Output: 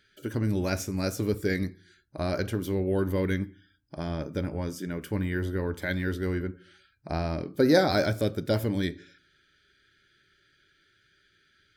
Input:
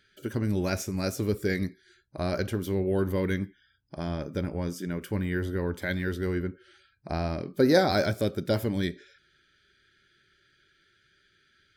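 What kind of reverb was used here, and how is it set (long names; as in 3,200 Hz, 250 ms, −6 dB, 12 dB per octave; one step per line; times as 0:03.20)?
feedback delay network reverb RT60 0.4 s, low-frequency decay 1.4×, high-frequency decay 0.3×, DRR 15.5 dB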